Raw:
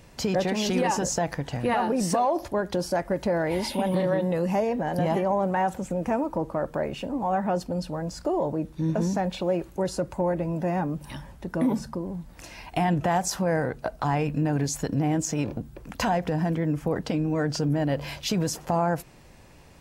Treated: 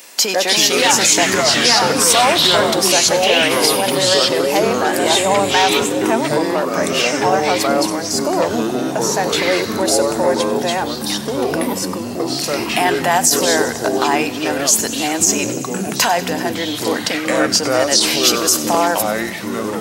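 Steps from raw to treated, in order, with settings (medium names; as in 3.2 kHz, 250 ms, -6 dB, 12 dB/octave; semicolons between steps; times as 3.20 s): high-pass 240 Hz 24 dB/octave; tilt EQ +4 dB/octave; ever faster or slower copies 244 ms, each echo -5 st, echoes 3; feedback echo behind a high-pass 95 ms, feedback 77%, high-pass 1.9 kHz, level -17.5 dB; on a send at -18 dB: reverberation RT60 4.4 s, pre-delay 89 ms; on the sum: loudness maximiser +11.5 dB; trim -1 dB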